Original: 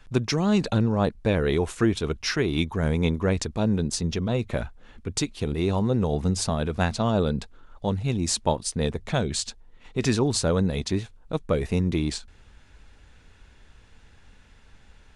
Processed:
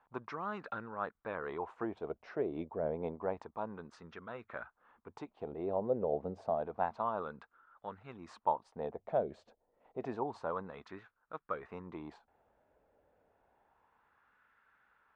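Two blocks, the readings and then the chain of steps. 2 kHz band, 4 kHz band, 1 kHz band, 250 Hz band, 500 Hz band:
-14.5 dB, under -30 dB, -5.5 dB, -19.5 dB, -10.5 dB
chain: high shelf 5900 Hz -6.5 dB; wah 0.29 Hz 580–1400 Hz, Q 3.1; high shelf 2700 Hz -11.5 dB

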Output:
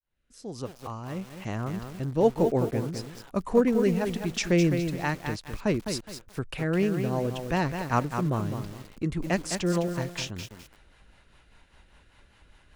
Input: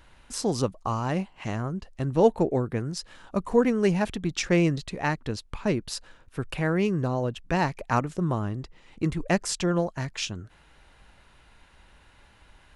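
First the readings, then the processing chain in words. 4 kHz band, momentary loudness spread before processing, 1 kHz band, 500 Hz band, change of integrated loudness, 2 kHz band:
-2.0 dB, 12 LU, -2.5 dB, -1.0 dB, -1.0 dB, -2.0 dB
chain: opening faded in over 1.89 s; rotary speaker horn 1.1 Hz, later 5 Hz, at 5.17; lo-fi delay 0.208 s, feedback 35%, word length 7-bit, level -6.5 dB

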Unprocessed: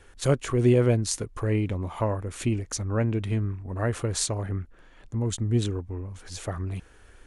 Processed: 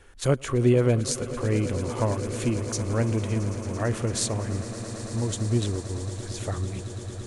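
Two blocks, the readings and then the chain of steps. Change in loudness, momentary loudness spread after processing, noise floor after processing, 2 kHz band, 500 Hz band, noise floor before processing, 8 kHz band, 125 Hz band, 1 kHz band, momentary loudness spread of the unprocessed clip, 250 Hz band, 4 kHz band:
+0.5 dB, 11 LU, -38 dBFS, +1.0 dB, +1.0 dB, -53 dBFS, +1.0 dB, +0.5 dB, +1.0 dB, 13 LU, +1.0 dB, +1.0 dB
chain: swelling echo 0.112 s, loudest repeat 8, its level -17.5 dB

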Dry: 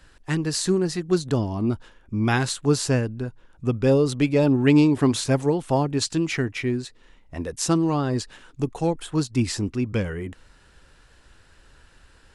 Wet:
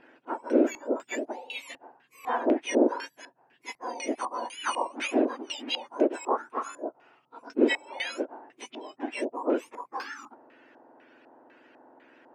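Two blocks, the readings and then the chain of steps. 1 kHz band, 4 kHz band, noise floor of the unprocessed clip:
-0.5 dB, -5.5 dB, -55 dBFS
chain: spectrum mirrored in octaves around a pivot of 1600 Hz; LFO low-pass square 2 Hz 870–2700 Hz

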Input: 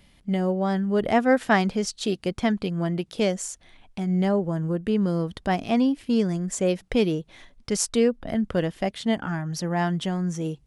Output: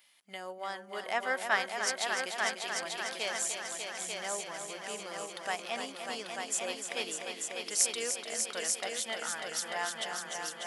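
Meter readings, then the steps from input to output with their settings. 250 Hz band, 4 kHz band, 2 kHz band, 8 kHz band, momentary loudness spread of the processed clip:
-26.5 dB, -0.5 dB, -1.5 dB, +2.5 dB, 10 LU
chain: HPF 1000 Hz 12 dB/oct; high shelf 8700 Hz +9.5 dB; multi-head echo 0.297 s, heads all three, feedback 59%, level -8 dB; gain -4.5 dB

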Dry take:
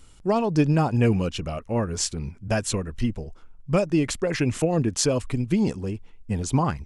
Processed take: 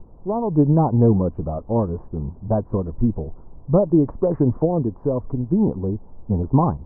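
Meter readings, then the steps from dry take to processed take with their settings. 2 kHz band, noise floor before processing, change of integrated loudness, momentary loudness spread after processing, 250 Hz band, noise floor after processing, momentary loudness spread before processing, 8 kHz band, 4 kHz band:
under -20 dB, -49 dBFS, +3.5 dB, 12 LU, +4.5 dB, -44 dBFS, 11 LU, under -40 dB, under -40 dB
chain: wow and flutter 24 cents; AGC; added noise brown -39 dBFS; elliptic low-pass 1000 Hz, stop band 70 dB; gain -2.5 dB

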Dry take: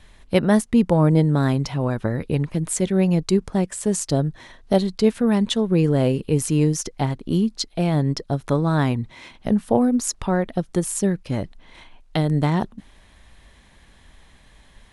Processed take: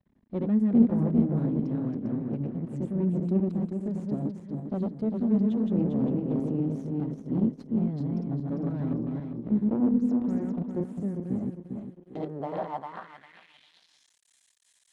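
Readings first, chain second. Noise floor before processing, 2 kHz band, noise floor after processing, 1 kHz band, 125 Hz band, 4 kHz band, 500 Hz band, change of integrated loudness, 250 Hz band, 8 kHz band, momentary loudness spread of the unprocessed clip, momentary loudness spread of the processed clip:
-52 dBFS, under -20 dB, -68 dBFS, -12.5 dB, -9.5 dB, under -25 dB, -11.5 dB, -7.0 dB, -4.5 dB, under -35 dB, 8 LU, 11 LU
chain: regenerating reverse delay 0.2 s, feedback 59%, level -1.5 dB; half-wave rectifier; band-pass sweep 230 Hz -> 7800 Hz, 11.93–14.19; gain +1.5 dB

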